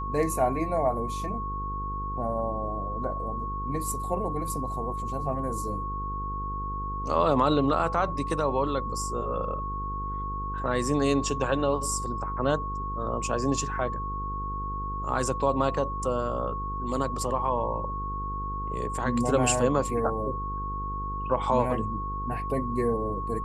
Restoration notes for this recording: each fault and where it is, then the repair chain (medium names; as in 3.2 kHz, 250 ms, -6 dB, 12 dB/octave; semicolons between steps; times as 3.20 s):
buzz 50 Hz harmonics 10 -35 dBFS
whine 1.1 kHz -32 dBFS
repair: de-hum 50 Hz, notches 10; band-stop 1.1 kHz, Q 30